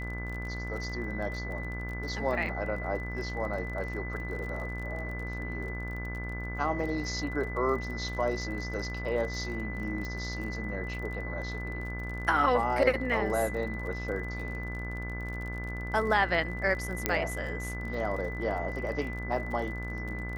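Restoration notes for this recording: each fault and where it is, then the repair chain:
buzz 60 Hz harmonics 37 -37 dBFS
crackle 36 per s -38 dBFS
whine 2 kHz -39 dBFS
10.05 s: pop
17.06 s: pop -8 dBFS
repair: de-click; band-stop 2 kHz, Q 30; de-hum 60 Hz, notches 37

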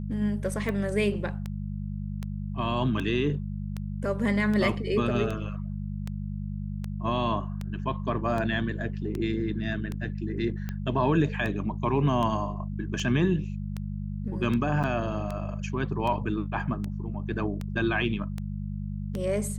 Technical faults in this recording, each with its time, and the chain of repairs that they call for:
hum 50 Hz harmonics 4 -33 dBFS
tick 78 rpm -20 dBFS
14.83–14.84 s: dropout 7.6 ms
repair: de-click; de-hum 50 Hz, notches 4; interpolate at 14.83 s, 7.6 ms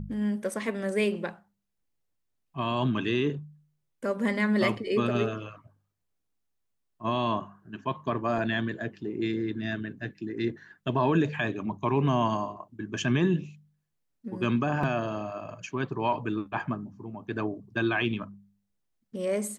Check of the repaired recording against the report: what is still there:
nothing left

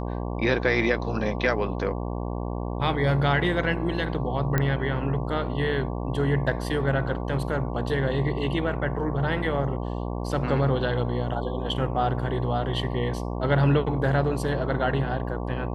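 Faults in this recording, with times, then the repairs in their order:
buzz 60 Hz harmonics 19 -30 dBFS
4.58 s: pop -11 dBFS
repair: de-click; de-hum 60 Hz, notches 19

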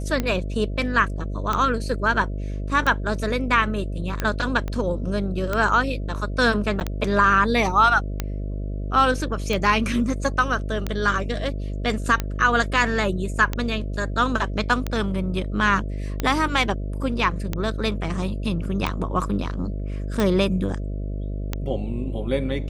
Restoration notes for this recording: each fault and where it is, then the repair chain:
buzz 50 Hz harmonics 13 -28 dBFS
tick 45 rpm -10 dBFS
4.68 s: pop -17 dBFS
6.80–6.81 s: dropout 8.1 ms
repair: de-click; de-hum 50 Hz, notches 13; interpolate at 6.80 s, 8.1 ms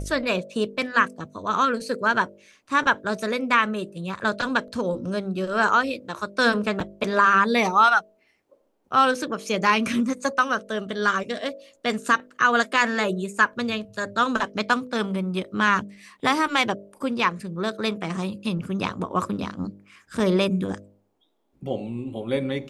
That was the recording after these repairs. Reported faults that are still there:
4.68 s: pop

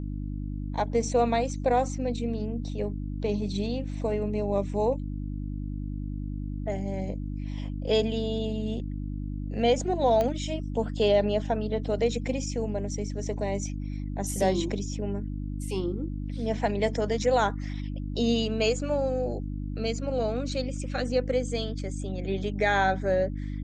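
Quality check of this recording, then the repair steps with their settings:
hum 50 Hz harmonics 6 -33 dBFS
10.21 s: pop -15 dBFS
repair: de-click; de-hum 50 Hz, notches 6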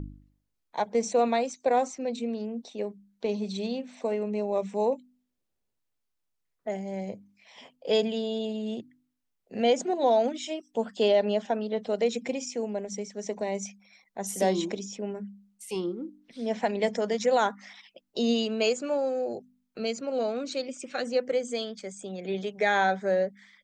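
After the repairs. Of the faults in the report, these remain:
nothing left

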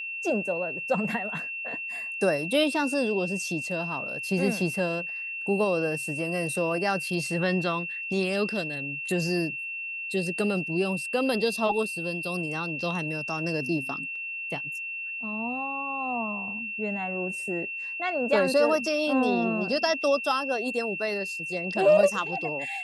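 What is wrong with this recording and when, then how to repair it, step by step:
whine 2.7 kHz -32 dBFS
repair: band-stop 2.7 kHz, Q 30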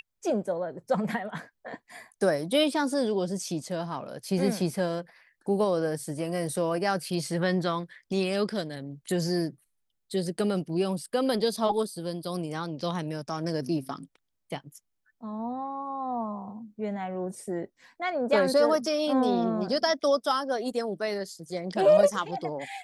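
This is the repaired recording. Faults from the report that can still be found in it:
nothing left

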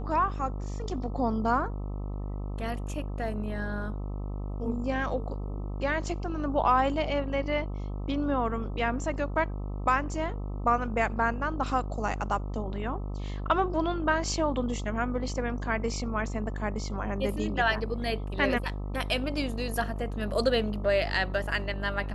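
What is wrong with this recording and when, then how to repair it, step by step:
buzz 50 Hz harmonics 26 -34 dBFS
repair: de-hum 50 Hz, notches 26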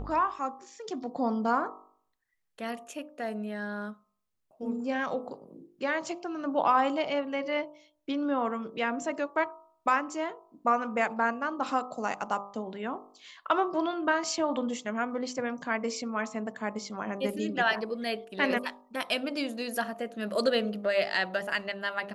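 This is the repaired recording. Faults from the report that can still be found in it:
nothing left

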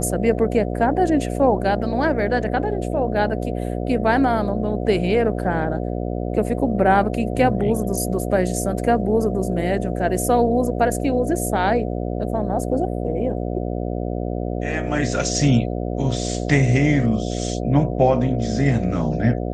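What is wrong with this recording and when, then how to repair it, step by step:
buzz 60 Hz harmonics 12 -25 dBFS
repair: de-hum 60 Hz, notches 12

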